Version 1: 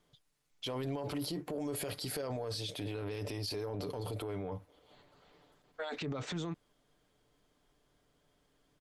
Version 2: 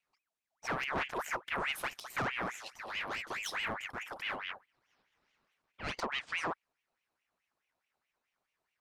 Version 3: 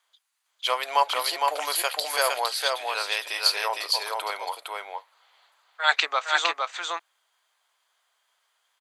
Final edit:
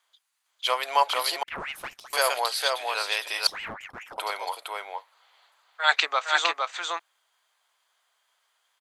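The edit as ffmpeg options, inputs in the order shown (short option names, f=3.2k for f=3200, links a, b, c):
-filter_complex "[1:a]asplit=2[a][b];[2:a]asplit=3[c][d][e];[c]atrim=end=1.432[f];[a]atrim=start=1.428:end=2.132[g];[d]atrim=start=2.128:end=3.472[h];[b]atrim=start=3.468:end=4.182[i];[e]atrim=start=4.178[j];[f][g]acrossfade=d=0.004:c1=hsin:c2=hsin[k];[k][h]acrossfade=d=0.004:c1=hsin:c2=hsin[l];[l][i]acrossfade=d=0.004:c1=hsin:c2=hsin[m];[m][j]acrossfade=d=0.004:c1=hsin:c2=hsin"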